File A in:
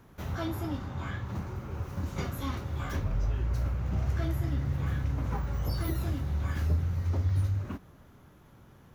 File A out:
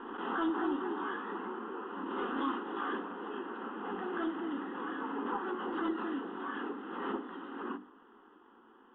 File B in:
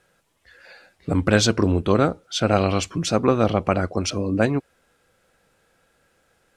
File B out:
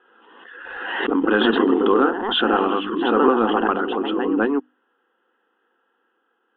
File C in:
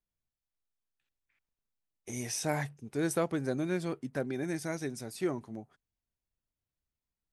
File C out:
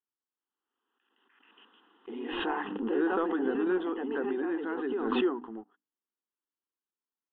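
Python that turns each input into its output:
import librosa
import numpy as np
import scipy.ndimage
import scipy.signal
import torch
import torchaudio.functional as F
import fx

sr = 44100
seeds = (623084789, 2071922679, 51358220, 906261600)

y = fx.high_shelf(x, sr, hz=2500.0, db=10.0)
y = fx.echo_pitch(y, sr, ms=273, semitones=2, count=3, db_per_echo=-6.0)
y = fx.brickwall_highpass(y, sr, low_hz=180.0)
y = fx.hum_notches(y, sr, base_hz=50, count=6)
y = fx.leveller(y, sr, passes=1)
y = scipy.signal.sosfilt(scipy.signal.butter(16, 3200.0, 'lowpass', fs=sr, output='sos'), y)
y = fx.fixed_phaser(y, sr, hz=610.0, stages=6)
y = fx.pre_swell(y, sr, db_per_s=36.0)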